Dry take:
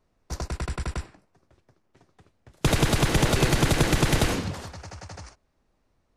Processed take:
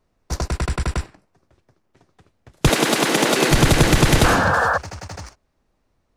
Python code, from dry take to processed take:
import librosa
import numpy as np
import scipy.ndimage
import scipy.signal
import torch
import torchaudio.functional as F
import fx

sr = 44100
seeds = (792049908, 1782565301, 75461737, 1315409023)

y = fx.highpass(x, sr, hz=220.0, slope=24, at=(2.69, 3.51))
y = fx.spec_paint(y, sr, seeds[0], shape='noise', start_s=4.24, length_s=0.54, low_hz=450.0, high_hz=1800.0, level_db=-26.0)
y = fx.leveller(y, sr, passes=1)
y = F.gain(torch.from_numpy(y), 4.0).numpy()